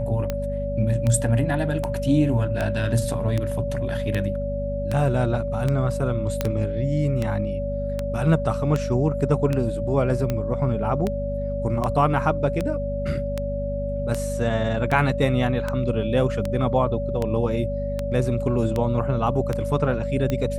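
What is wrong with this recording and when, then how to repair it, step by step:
mains hum 50 Hz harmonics 5 −29 dBFS
scratch tick 78 rpm −12 dBFS
whistle 570 Hz −27 dBFS
0:06.41: click −8 dBFS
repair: click removal
hum removal 50 Hz, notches 5
notch filter 570 Hz, Q 30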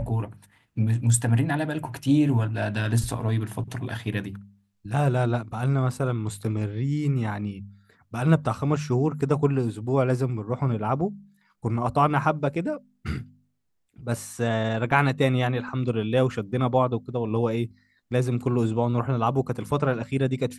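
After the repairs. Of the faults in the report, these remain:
none of them is left

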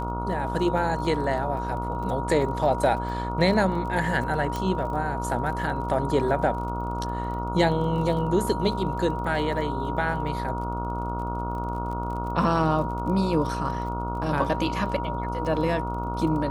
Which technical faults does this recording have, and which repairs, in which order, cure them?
mains buzz 60 Hz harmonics 24 −31 dBFS
surface crackle 27 per second −35 dBFS
whistle 950 Hz −31 dBFS
0:04.56: click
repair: click removal
hum removal 60 Hz, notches 24
notch filter 950 Hz, Q 30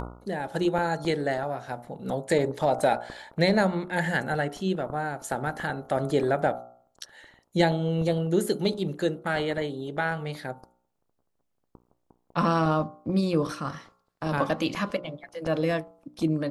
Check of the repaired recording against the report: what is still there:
none of them is left

